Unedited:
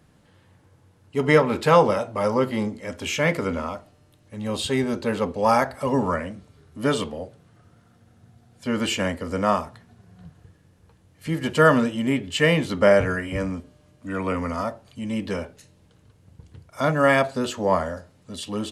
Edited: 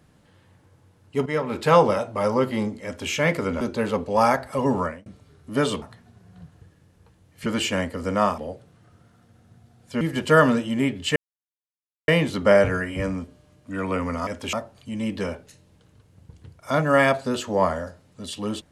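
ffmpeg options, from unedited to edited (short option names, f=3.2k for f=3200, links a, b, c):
-filter_complex "[0:a]asplit=11[a][b][c][d][e][f][g][h][i][j][k];[a]atrim=end=1.26,asetpts=PTS-STARTPTS,afade=t=out:st=1.256:d=0.004:c=hsin:silence=0.199526[l];[b]atrim=start=1.26:end=3.612,asetpts=PTS-STARTPTS,afade=t=in:d=0.49:silence=0.199526[m];[c]atrim=start=4.888:end=6.34,asetpts=PTS-STARTPTS,afade=t=out:st=1.182:d=0.27[n];[d]atrim=start=6.34:end=7.102,asetpts=PTS-STARTPTS,afade=t=in:d=0.004:c=hsin[o];[e]atrim=start=9.648:end=11.292[p];[f]atrim=start=8.728:end=9.652[q];[g]atrim=start=7.098:end=8.732[r];[h]atrim=start=11.288:end=12.44,asetpts=PTS-STARTPTS,afade=t=out:st=1.148:d=0.004:c=hsin,apad=pad_dur=0.92[s];[i]atrim=start=12.44:end=14.632,asetpts=PTS-STARTPTS,afade=t=in:d=0.004:c=hsin[t];[j]atrim=start=2.848:end=3.112[u];[k]atrim=start=14.628[v];[l][m]concat=n=2:v=0:a=1[w];[n][o]concat=n=2:v=0:a=1[x];[w][x]acrossfade=d=0.004:c1=hsin:c2=hsin[y];[y][p]acrossfade=d=0.004:c1=hsin:c2=hsin[z];[z][q]acrossfade=d=0.004:c1=hsin:c2=hsin[aa];[aa][r]acrossfade=d=0.004:c1=hsin:c2=hsin[ab];[s][t]concat=n=2:v=0:a=1[ac];[ab][ac]acrossfade=d=0.004:c1=hsin:c2=hsin[ad];[ad][u]acrossfade=d=0.004:c1=hsin:c2=hsin[ae];[ae][v]acrossfade=d=0.004:c1=hsin:c2=hsin"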